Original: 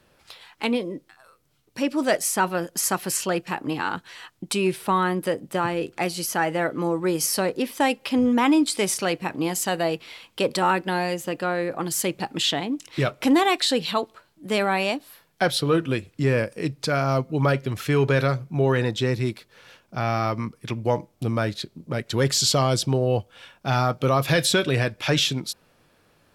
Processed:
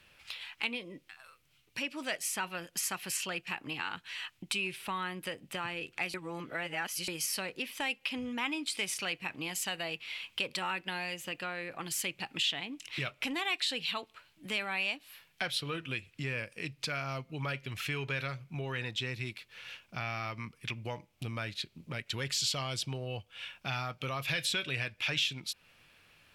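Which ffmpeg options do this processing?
ffmpeg -i in.wav -filter_complex "[0:a]asplit=3[link_01][link_02][link_03];[link_01]atrim=end=6.142[link_04];[link_02]atrim=start=6.138:end=7.082,asetpts=PTS-STARTPTS,areverse[link_05];[link_03]atrim=start=7.078[link_06];[link_04][link_05]acrossfade=duration=0.004:curve1=hsin:curve2=hsin[link_07];[link_07][link_06]acrossfade=duration=0.004:curve1=hsin:curve2=hsin,equalizer=frequency=2600:width_type=o:width=0.95:gain=11.5,acompressor=threshold=-34dB:ratio=2,equalizer=frequency=370:width_type=o:width=2.6:gain=-7.5,volume=-3dB" out.wav

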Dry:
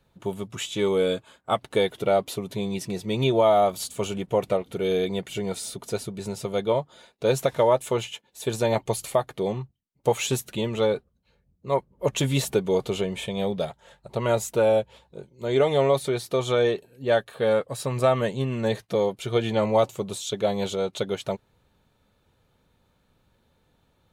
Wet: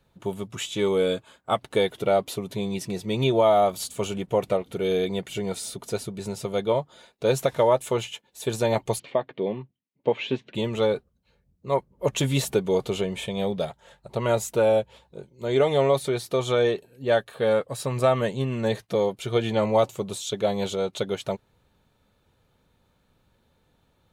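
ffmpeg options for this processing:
ffmpeg -i in.wav -filter_complex "[0:a]asplit=3[link_01][link_02][link_03];[link_01]afade=type=out:start_time=8.98:duration=0.02[link_04];[link_02]highpass=180,equalizer=frequency=260:width_type=q:width=4:gain=4,equalizer=frequency=780:width_type=q:width=4:gain=-6,equalizer=frequency=1300:width_type=q:width=4:gain=-9,lowpass=frequency=3200:width=0.5412,lowpass=frequency=3200:width=1.3066,afade=type=in:start_time=8.98:duration=0.02,afade=type=out:start_time=10.54:duration=0.02[link_05];[link_03]afade=type=in:start_time=10.54:duration=0.02[link_06];[link_04][link_05][link_06]amix=inputs=3:normalize=0" out.wav

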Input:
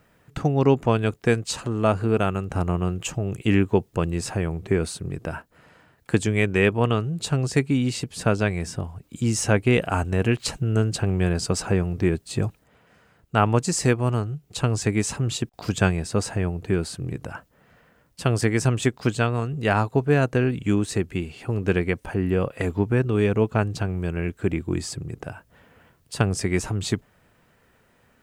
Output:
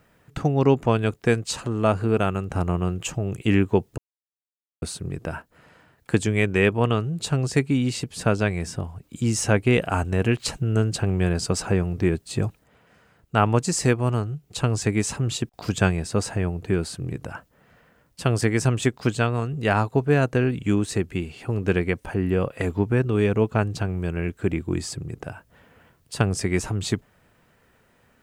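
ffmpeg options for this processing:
ffmpeg -i in.wav -filter_complex "[0:a]asplit=3[link_01][link_02][link_03];[link_01]atrim=end=3.98,asetpts=PTS-STARTPTS,afade=type=out:start_time=3.976:duration=0.004:curve=hsin[link_04];[link_02]atrim=start=3.98:end=4.82,asetpts=PTS-STARTPTS,volume=0[link_05];[link_03]atrim=start=4.82,asetpts=PTS-STARTPTS,afade=type=in:duration=0.004:curve=hsin[link_06];[link_04][link_05][link_06]concat=n=3:v=0:a=1" out.wav

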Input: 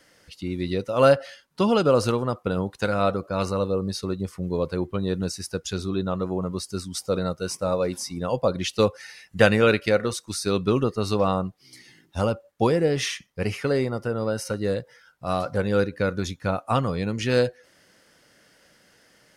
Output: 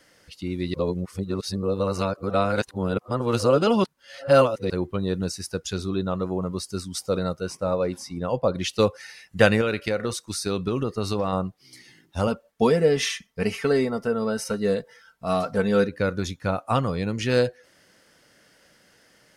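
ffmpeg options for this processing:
ffmpeg -i in.wav -filter_complex "[0:a]asettb=1/sr,asplit=3[link_01][link_02][link_03];[link_01]atrim=end=7.404[link_04];[link_02]atrim=start=7.4:end=8.55,asetpts=PTS-STARTPTS,afade=type=in:duration=0.004:curve=qsin,afade=type=out:start_time=1.146:duration=0.004:curve=qsin,highshelf=frequency=4000:gain=-9[link_05];[link_03]atrim=start=8.546[link_06];[link_04][link_05]acrossfade=duration=0.004:curve1=hsin:curve2=qsin[link_07];[link_07][link_06]acrossfade=duration=0.004:curve1=qsin:curve2=hsin,asettb=1/sr,asplit=3[link_08][link_09][link_10];[link_08]atrim=end=9.614[link_11];[link_09]atrim=start=9.61:end=11.33,asetpts=PTS-STARTPTS,afade=type=in:duration=0.004:curve=qsin,afade=type=out:start_time=1.716:duration=0.004:curve=qsin,acompressor=threshold=-20dB:ratio=6:attack=3.2:release=140:knee=1:detection=peak[link_12];[link_10]atrim=start=11.326[link_13];[link_11][link_12]acrossfade=duration=0.004:curve1=hsin:curve2=qsin[link_14];[link_14][link_13]acrossfade=duration=0.004:curve1=qsin:curve2=hsin,asettb=1/sr,asplit=3[link_15][link_16][link_17];[link_15]atrim=end=12.274[link_18];[link_16]atrim=start=12.27:end=15.89,asetpts=PTS-STARTPTS,afade=type=in:duration=0.004:curve=qsin,afade=type=out:start_time=3.616:duration=0.004:curve=qsin,aecho=1:1:4.5:0.65,atrim=end_sample=159642[link_19];[link_17]atrim=start=15.886[link_20];[link_18][link_19]acrossfade=duration=0.004:curve1=hsin:curve2=qsin[link_21];[link_21][link_20]acrossfade=duration=0.004:curve1=qsin:curve2=hsin,asplit=3[link_22][link_23][link_24];[link_22]atrim=end=0.742[link_25];[link_23]atrim=start=0.738:end=4.702,asetpts=PTS-STARTPTS,areverse[link_26];[link_24]atrim=start=4.698[link_27];[link_25][link_26]acrossfade=duration=0.004:curve1=hsin:curve2=hsin[link_28];[link_28][link_27]acrossfade=duration=0.004:curve1=hsin:curve2=hsin" out.wav

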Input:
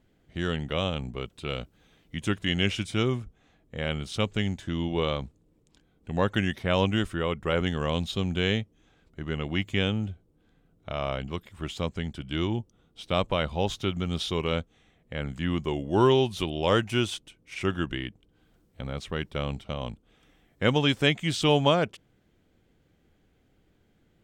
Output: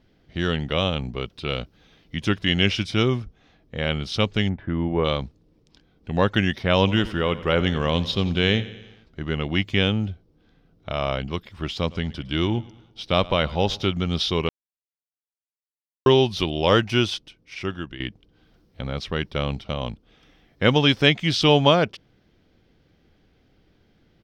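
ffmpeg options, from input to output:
ffmpeg -i in.wav -filter_complex "[0:a]asplit=3[link_01][link_02][link_03];[link_01]afade=type=out:start_time=4.48:duration=0.02[link_04];[link_02]lowpass=frequency=1900:width=0.5412,lowpass=frequency=1900:width=1.3066,afade=type=in:start_time=4.48:duration=0.02,afade=type=out:start_time=5.04:duration=0.02[link_05];[link_03]afade=type=in:start_time=5.04:duration=0.02[link_06];[link_04][link_05][link_06]amix=inputs=3:normalize=0,asettb=1/sr,asplit=3[link_07][link_08][link_09];[link_07]atrim=end=6.784[link_10];[link_08]atrim=start=6.78:end=9.3,asetpts=PTS-STARTPTS,afade=type=in:duration=0.004:curve=qsin,afade=type=out:start_time=2.516:duration=0.004:curve=qsin,aecho=1:1:89|178|267|356|445:0.15|0.0868|0.0503|0.0292|0.0169,atrim=end_sample=111132[link_11];[link_09]atrim=start=9.296[link_12];[link_10][link_11]acrossfade=duration=0.004:curve1=hsin:curve2=qsin[link_13];[link_13][link_12]acrossfade=duration=0.004:curve1=qsin:curve2=hsin,asplit=3[link_14][link_15][link_16];[link_14]afade=type=out:start_time=11.87:duration=0.02[link_17];[link_15]aecho=1:1:108|216|324|432:0.0891|0.0437|0.0214|0.0105,afade=type=in:start_time=11.87:duration=0.02,afade=type=out:start_time=13.89:duration=0.02[link_18];[link_16]afade=type=in:start_time=13.89:duration=0.02[link_19];[link_17][link_18][link_19]amix=inputs=3:normalize=0,asplit=4[link_20][link_21][link_22][link_23];[link_20]atrim=end=14.49,asetpts=PTS-STARTPTS,afade=type=out:start_time=14.486:duration=0.004:curve=hsin[link_24];[link_21]atrim=start=14.49:end=16.06,asetpts=PTS-STARTPTS,volume=0[link_25];[link_22]atrim=start=16.06:end=18,asetpts=PTS-STARTPTS,afade=type=in:duration=0.004:curve=hsin,afade=type=out:start_time=0.93:duration=1.01:silence=0.251189[link_26];[link_23]atrim=start=18,asetpts=PTS-STARTPTS,afade=type=in:duration=0.004:curve=hsin:silence=0.251189[link_27];[link_24][link_25][link_26][link_27]concat=n=4:v=0:a=1,highshelf=frequency=6300:width_type=q:width=3:gain=-6.5,volume=5dB" out.wav

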